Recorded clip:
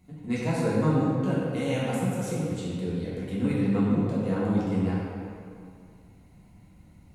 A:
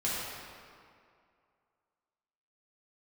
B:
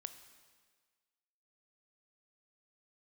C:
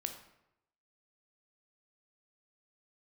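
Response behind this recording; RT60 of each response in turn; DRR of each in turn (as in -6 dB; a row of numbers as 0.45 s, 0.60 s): A; 2.3 s, 1.6 s, 0.85 s; -8.5 dB, 9.5 dB, 5.5 dB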